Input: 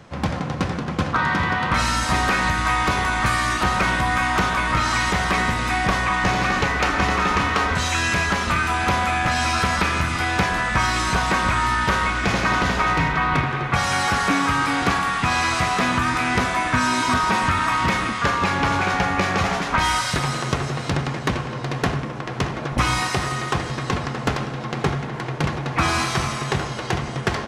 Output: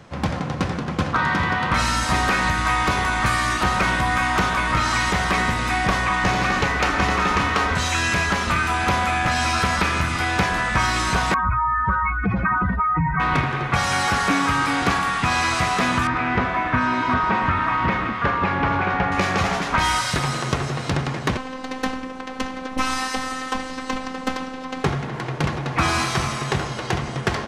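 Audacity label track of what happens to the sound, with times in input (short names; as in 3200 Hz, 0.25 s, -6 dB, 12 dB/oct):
11.340000	13.200000	spectral contrast raised exponent 2.8
16.070000	19.120000	LPF 2300 Hz
21.370000	24.840000	robotiser 260 Hz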